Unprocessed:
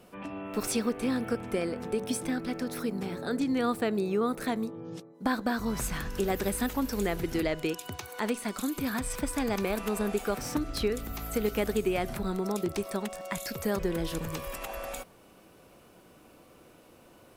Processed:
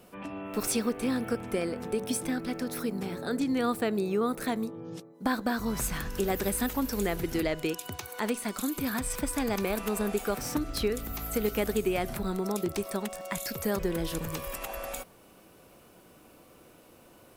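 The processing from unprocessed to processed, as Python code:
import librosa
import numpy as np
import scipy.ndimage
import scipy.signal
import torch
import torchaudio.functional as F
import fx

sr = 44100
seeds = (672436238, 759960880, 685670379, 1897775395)

y = fx.high_shelf(x, sr, hz=10000.0, db=6.5)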